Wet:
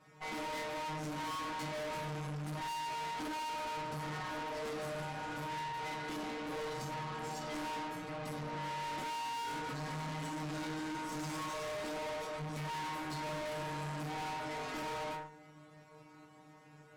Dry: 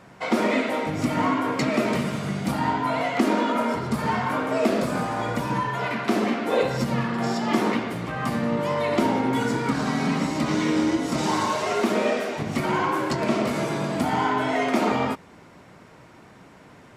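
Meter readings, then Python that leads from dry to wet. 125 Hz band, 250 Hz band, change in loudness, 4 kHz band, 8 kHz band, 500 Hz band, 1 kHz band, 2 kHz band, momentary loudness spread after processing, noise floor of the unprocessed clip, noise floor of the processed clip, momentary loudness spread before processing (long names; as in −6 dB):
−14.0 dB, −20.5 dB, −15.5 dB, −11.0 dB, −11.0 dB, −17.5 dB, −13.0 dB, −14.0 dB, 4 LU, −49 dBFS, −59 dBFS, 4 LU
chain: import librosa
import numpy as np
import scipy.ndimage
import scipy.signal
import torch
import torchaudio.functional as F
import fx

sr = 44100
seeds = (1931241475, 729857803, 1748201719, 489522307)

y = fx.stiff_resonator(x, sr, f0_hz=150.0, decay_s=0.6, stiffness=0.002)
y = fx.tube_stage(y, sr, drive_db=47.0, bias=0.75)
y = F.gain(torch.from_numpy(y), 8.5).numpy()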